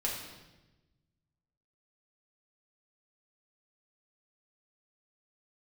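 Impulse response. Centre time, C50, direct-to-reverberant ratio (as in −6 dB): 51 ms, 3.0 dB, −3.5 dB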